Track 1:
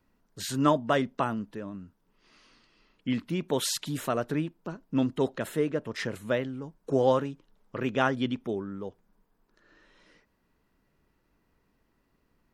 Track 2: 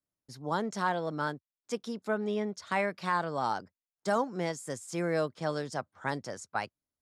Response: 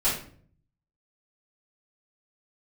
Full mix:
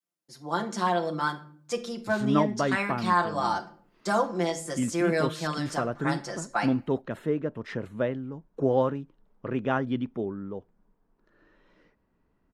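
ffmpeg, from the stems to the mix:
-filter_complex "[0:a]lowpass=frequency=1100:poles=1,adelay=1700,volume=-3.5dB[link_01];[1:a]highpass=200,aecho=1:1:5.8:0.93,volume=-3dB,asplit=2[link_02][link_03];[link_03]volume=-18.5dB[link_04];[2:a]atrim=start_sample=2205[link_05];[link_04][link_05]afir=irnorm=-1:irlink=0[link_06];[link_01][link_02][link_06]amix=inputs=3:normalize=0,adynamicequalizer=threshold=0.00708:dfrequency=510:dqfactor=1.1:tfrequency=510:tqfactor=1.1:attack=5:release=100:ratio=0.375:range=2:mode=cutabove:tftype=bell,dynaudnorm=framelen=110:gausssize=11:maxgain=5dB"

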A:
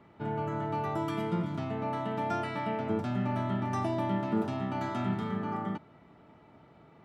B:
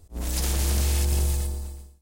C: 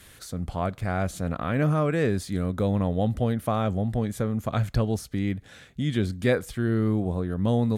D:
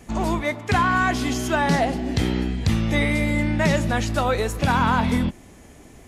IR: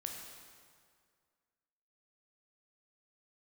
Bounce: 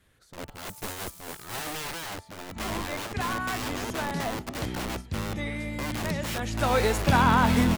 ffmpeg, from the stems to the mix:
-filter_complex "[0:a]highpass=840,volume=-13dB[link_01];[1:a]acrusher=bits=6:dc=4:mix=0:aa=0.000001,aderivative,adelay=400,volume=-11.5dB[link_02];[2:a]highshelf=frequency=3000:gain=-10,aeval=exprs='(mod(18.8*val(0)+1,2)-1)/18.8':channel_layout=same,volume=-3.5dB,asplit=2[link_03][link_04];[3:a]adelay=2450,volume=-1dB,afade=type=in:start_time=6.37:duration=0.45:silence=0.281838[link_05];[link_04]apad=whole_len=310702[link_06];[link_01][link_06]sidechaingate=range=-33dB:threshold=-45dB:ratio=16:detection=peak[link_07];[link_07][link_02][link_03][link_05]amix=inputs=4:normalize=0,agate=range=-8dB:threshold=-34dB:ratio=16:detection=peak"

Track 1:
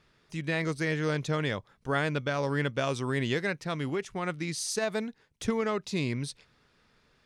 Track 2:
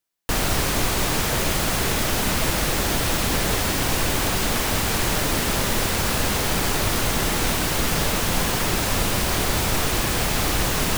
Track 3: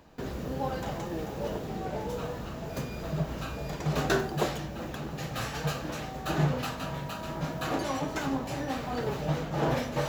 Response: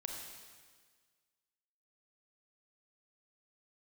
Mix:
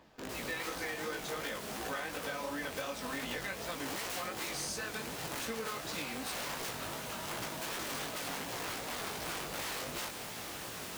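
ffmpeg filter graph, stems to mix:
-filter_complex "[0:a]highpass=frequency=530:poles=1,aecho=1:1:3.9:0.97,flanger=delay=6.9:depth=1:regen=83:speed=0.74:shape=triangular,volume=3dB[link_01];[1:a]highpass=79,volume=-16dB[link_02];[2:a]aphaser=in_gain=1:out_gain=1:delay=4.8:decay=0.4:speed=1.5:type=sinusoidal,aeval=exprs='(mod(21.1*val(0)+1,2)-1)/21.1':channel_layout=same,volume=-2.5dB[link_03];[link_01][link_02][link_03]amix=inputs=3:normalize=0,flanger=delay=17:depth=5:speed=2.7,lowshelf=frequency=170:gain=-9.5,acompressor=threshold=-35dB:ratio=6"

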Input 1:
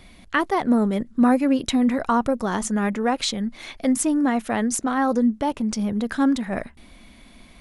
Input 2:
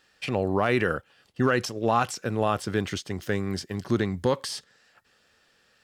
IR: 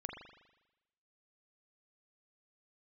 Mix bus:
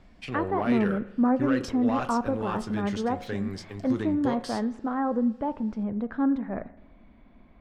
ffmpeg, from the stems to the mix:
-filter_complex "[0:a]lowpass=1300,volume=-6.5dB,asplit=2[link_01][link_02];[link_02]volume=-12dB[link_03];[1:a]flanger=delay=7:depth=3.4:regen=-57:speed=0.57:shape=sinusoidal,asoftclip=type=tanh:threshold=-17dB,volume=-4dB,asplit=2[link_04][link_05];[link_05]volume=-8dB[link_06];[2:a]atrim=start_sample=2205[link_07];[link_03][link_06]amix=inputs=2:normalize=0[link_08];[link_08][link_07]afir=irnorm=-1:irlink=0[link_09];[link_01][link_04][link_09]amix=inputs=3:normalize=0,highshelf=frequency=11000:gain=-10,bandreject=frequency=181.1:width_type=h:width=4,bandreject=frequency=362.2:width_type=h:width=4,bandreject=frequency=543.3:width_type=h:width=4,bandreject=frequency=724.4:width_type=h:width=4,bandreject=frequency=905.5:width_type=h:width=4,bandreject=frequency=1086.6:width_type=h:width=4,bandreject=frequency=1267.7:width_type=h:width=4,bandreject=frequency=1448.8:width_type=h:width=4,bandreject=frequency=1629.9:width_type=h:width=4,bandreject=frequency=1811:width_type=h:width=4,bandreject=frequency=1992.1:width_type=h:width=4,bandreject=frequency=2173.2:width_type=h:width=4,bandreject=frequency=2354.3:width_type=h:width=4,bandreject=frequency=2535.4:width_type=h:width=4,bandreject=frequency=2716.5:width_type=h:width=4"

